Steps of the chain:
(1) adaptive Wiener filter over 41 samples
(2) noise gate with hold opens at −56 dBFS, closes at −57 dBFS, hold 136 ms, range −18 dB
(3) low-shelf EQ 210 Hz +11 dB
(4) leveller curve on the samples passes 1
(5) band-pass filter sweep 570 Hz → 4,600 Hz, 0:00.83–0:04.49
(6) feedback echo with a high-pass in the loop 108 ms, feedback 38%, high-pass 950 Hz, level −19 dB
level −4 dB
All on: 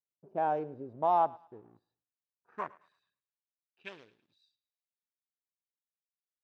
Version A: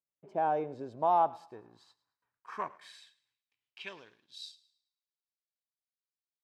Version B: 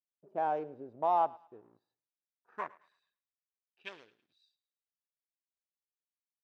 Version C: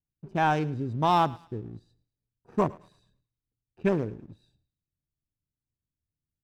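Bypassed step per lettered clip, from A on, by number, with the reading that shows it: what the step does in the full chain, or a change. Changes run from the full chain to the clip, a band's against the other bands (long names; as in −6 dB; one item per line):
1, change in momentary loudness spread −3 LU
3, 125 Hz band −5.5 dB
5, 125 Hz band +11.5 dB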